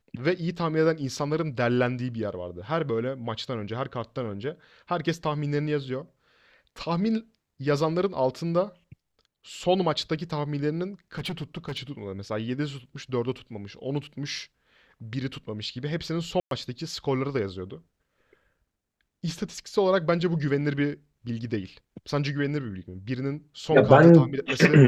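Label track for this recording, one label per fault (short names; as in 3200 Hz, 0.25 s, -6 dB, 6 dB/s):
11.150000	11.790000	clipped -28 dBFS
16.400000	16.510000	gap 0.112 s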